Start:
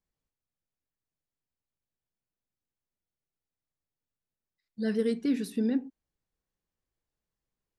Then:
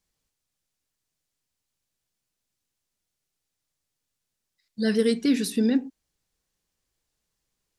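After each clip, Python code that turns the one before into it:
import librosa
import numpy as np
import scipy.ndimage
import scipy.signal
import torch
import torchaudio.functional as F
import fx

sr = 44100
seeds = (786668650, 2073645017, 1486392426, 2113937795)

y = fx.peak_eq(x, sr, hz=6500.0, db=9.0, octaves=2.7)
y = y * librosa.db_to_amplitude(5.5)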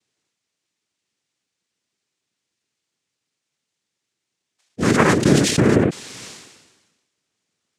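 y = fx.noise_vocoder(x, sr, seeds[0], bands=3)
y = fx.sustainer(y, sr, db_per_s=48.0)
y = y * librosa.db_to_amplitude(6.0)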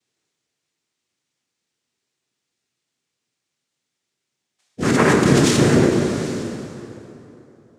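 y = fx.echo_banded(x, sr, ms=570, feedback_pct=41, hz=460.0, wet_db=-21.0)
y = fx.rev_plate(y, sr, seeds[1], rt60_s=3.0, hf_ratio=0.65, predelay_ms=0, drr_db=0.5)
y = y * librosa.db_to_amplitude(-2.0)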